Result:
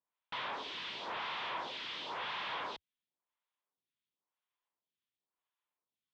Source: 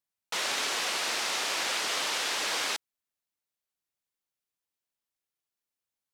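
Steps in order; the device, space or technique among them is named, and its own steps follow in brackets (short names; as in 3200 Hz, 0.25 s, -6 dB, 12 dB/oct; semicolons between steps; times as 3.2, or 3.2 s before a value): vibe pedal into a guitar amplifier (photocell phaser 0.95 Hz; tube stage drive 45 dB, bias 0.7; speaker cabinet 82–3600 Hz, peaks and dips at 83 Hz -8 dB, 1000 Hz +9 dB, 3400 Hz +6 dB); gain +5 dB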